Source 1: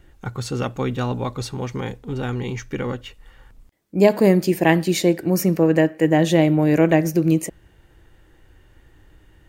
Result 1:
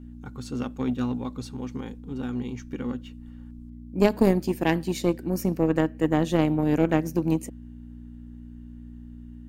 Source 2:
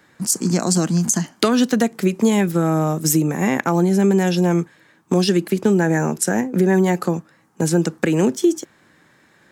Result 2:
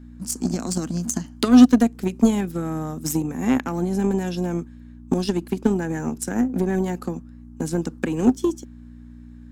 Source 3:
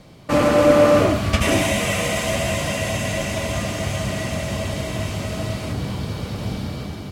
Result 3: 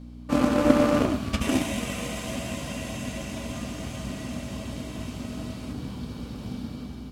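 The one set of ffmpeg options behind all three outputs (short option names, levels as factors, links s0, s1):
-af "aeval=exprs='val(0)+0.0282*(sin(2*PI*60*n/s)+sin(2*PI*2*60*n/s)/2+sin(2*PI*3*60*n/s)/3+sin(2*PI*4*60*n/s)/4+sin(2*PI*5*60*n/s)/5)':c=same,equalizer=f=100:t=o:w=0.33:g=-4,equalizer=f=250:t=o:w=0.33:g=12,equalizer=f=630:t=o:w=0.33:g=-4,equalizer=f=2000:t=o:w=0.33:g=-5,aeval=exprs='1.33*(cos(1*acos(clip(val(0)/1.33,-1,1)))-cos(1*PI/2))+0.106*(cos(3*acos(clip(val(0)/1.33,-1,1)))-cos(3*PI/2))+0.0668*(cos(7*acos(clip(val(0)/1.33,-1,1)))-cos(7*PI/2))':c=same,volume=0.668"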